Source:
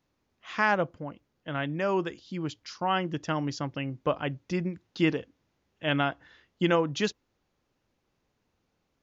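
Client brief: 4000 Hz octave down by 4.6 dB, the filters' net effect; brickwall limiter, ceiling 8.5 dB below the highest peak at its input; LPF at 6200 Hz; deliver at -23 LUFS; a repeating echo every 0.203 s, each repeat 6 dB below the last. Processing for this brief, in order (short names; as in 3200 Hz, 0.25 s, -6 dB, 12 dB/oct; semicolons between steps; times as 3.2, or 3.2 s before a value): LPF 6200 Hz; bell 4000 Hz -6.5 dB; limiter -20 dBFS; feedback echo 0.203 s, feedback 50%, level -6 dB; gain +9.5 dB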